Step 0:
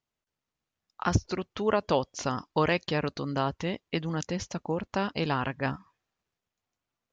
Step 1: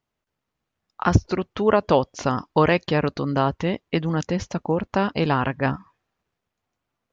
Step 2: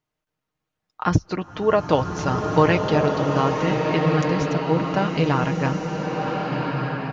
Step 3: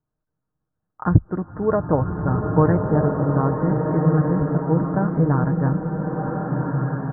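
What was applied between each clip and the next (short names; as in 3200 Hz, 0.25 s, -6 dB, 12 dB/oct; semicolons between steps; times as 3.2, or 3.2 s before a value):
high shelf 3500 Hz -10 dB; gain +8 dB
comb 6.5 ms, depth 46%; bloom reverb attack 1.45 s, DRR 1 dB; gain -2 dB
steep low-pass 1700 Hz 72 dB/oct; low shelf 280 Hz +11.5 dB; gain -4.5 dB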